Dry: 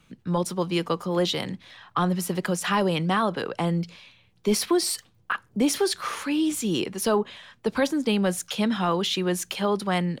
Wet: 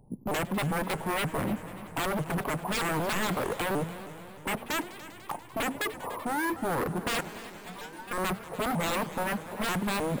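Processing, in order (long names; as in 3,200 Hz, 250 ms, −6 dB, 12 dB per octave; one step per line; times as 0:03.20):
Chebyshev low-pass filter 1,000 Hz, order 6
decimation without filtering 4×
wave folding −30 dBFS
0:07.21–0:08.12: stiff-string resonator 170 Hz, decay 0.34 s, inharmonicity 0.002
echo machine with several playback heads 97 ms, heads all three, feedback 68%, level −19.5 dB
pitch modulation by a square or saw wave saw up 3.2 Hz, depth 250 cents
level +5.5 dB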